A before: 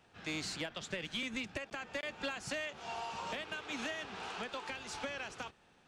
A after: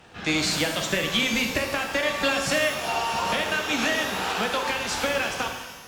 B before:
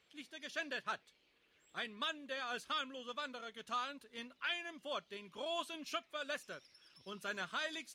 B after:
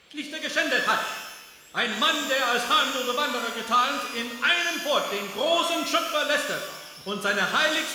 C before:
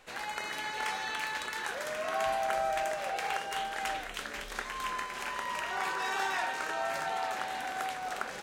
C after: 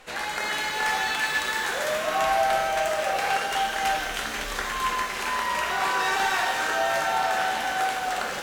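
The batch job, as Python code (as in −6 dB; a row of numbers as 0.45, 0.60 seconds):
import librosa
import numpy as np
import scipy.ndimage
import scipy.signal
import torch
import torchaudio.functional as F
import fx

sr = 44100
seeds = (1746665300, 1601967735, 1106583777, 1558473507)

y = fx.fold_sine(x, sr, drive_db=8, ceiling_db=-16.5)
y = fx.rev_shimmer(y, sr, seeds[0], rt60_s=1.1, semitones=12, shimmer_db=-8, drr_db=3.0)
y = y * 10.0 ** (-26 / 20.0) / np.sqrt(np.mean(np.square(y)))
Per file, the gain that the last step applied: +2.5, +4.5, −4.0 decibels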